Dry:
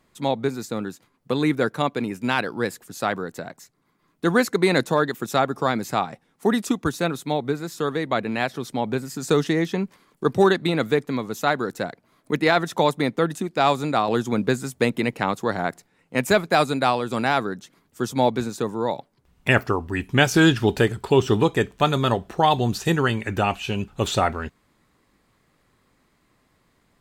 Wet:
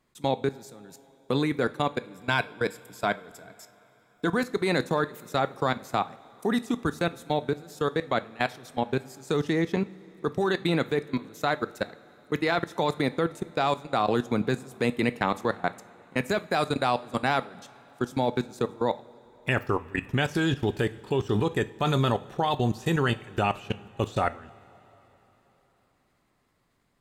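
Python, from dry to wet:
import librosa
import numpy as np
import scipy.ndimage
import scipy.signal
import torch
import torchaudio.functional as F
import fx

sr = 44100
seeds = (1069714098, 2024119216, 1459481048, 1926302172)

y = fx.ripple_eq(x, sr, per_octave=1.7, db=9, at=(1.98, 4.35))
y = fx.level_steps(y, sr, step_db=24)
y = fx.rev_double_slope(y, sr, seeds[0], early_s=0.36, late_s=4.1, knee_db=-18, drr_db=12.5)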